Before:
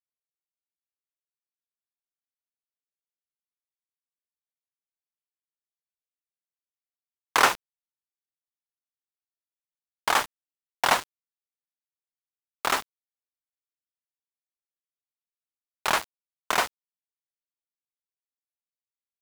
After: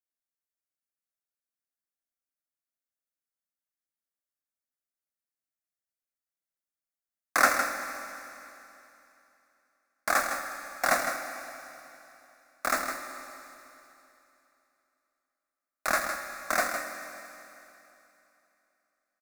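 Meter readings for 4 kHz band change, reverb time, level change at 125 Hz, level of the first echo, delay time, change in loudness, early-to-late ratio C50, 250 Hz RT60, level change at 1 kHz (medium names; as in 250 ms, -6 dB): -8.5 dB, 3.0 s, no reading, -8.0 dB, 159 ms, -4.0 dB, 4.0 dB, 3.0 s, -3.0 dB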